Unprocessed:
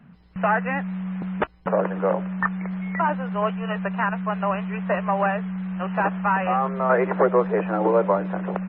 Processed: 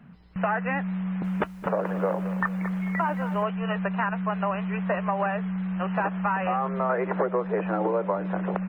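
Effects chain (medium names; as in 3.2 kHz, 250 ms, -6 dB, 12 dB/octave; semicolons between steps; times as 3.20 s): compression, threshold -22 dBFS, peak gain reduction 8.5 dB; 1.02–3.43 s: bit-crushed delay 221 ms, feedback 35%, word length 8-bit, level -12.5 dB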